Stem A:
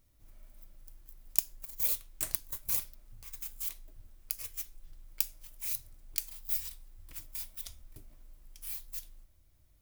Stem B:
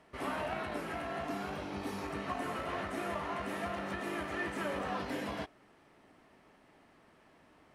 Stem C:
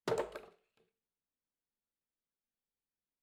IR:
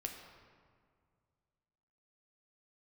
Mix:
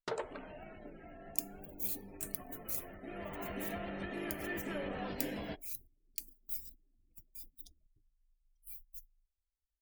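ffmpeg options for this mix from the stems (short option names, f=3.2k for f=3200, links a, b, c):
-filter_complex "[0:a]volume=-7.5dB[a];[1:a]equalizer=f=1.1k:t=o:w=0.97:g=-10,acontrast=84,adelay=100,volume=-8dB,afade=t=in:st=2.95:d=0.52:silence=0.354813[b];[2:a]lowshelf=f=480:g=-10,volume=1dB[c];[a][b][c]amix=inputs=3:normalize=0,afftdn=nr=34:nf=-54,agate=range=-13dB:threshold=-52dB:ratio=16:detection=peak"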